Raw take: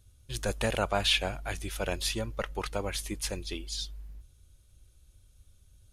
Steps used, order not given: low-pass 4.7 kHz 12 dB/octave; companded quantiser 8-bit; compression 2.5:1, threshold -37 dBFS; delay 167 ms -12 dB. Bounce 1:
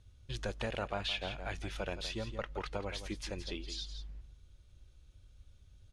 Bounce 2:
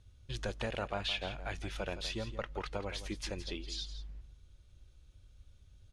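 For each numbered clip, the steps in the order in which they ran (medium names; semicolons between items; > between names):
companded quantiser > delay > compression > low-pass; companded quantiser > low-pass > compression > delay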